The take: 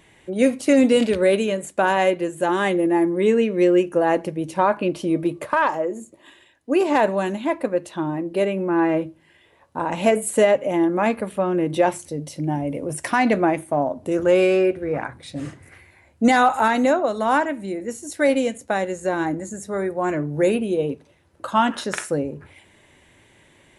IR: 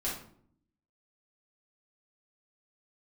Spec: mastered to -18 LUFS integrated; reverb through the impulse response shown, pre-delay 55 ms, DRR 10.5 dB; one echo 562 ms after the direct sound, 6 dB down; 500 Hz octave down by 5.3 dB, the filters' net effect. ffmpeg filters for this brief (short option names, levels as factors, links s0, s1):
-filter_complex "[0:a]equalizer=f=500:t=o:g=-7,aecho=1:1:562:0.501,asplit=2[s0][s1];[1:a]atrim=start_sample=2205,adelay=55[s2];[s1][s2]afir=irnorm=-1:irlink=0,volume=0.178[s3];[s0][s3]amix=inputs=2:normalize=0,volume=1.78"